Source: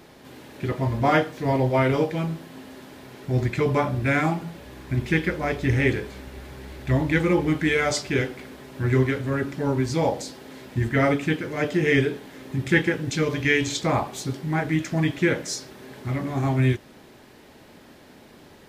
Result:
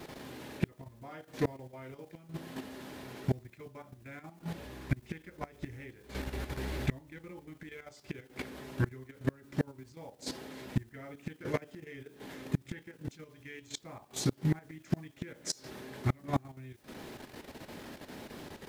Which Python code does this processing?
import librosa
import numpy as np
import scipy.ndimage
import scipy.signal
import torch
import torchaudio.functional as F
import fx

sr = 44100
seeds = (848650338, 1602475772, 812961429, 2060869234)

y = fx.gate_flip(x, sr, shuts_db=-18.0, range_db=-28)
y = fx.quant_dither(y, sr, seeds[0], bits=12, dither='triangular')
y = fx.level_steps(y, sr, step_db=10)
y = y * librosa.db_to_amplitude(4.0)